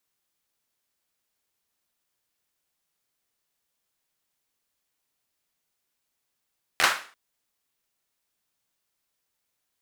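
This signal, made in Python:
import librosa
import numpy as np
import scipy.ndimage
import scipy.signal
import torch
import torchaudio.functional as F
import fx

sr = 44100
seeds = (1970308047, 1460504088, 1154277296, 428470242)

y = fx.drum_clap(sr, seeds[0], length_s=0.34, bursts=4, spacing_ms=12, hz=1400.0, decay_s=0.4)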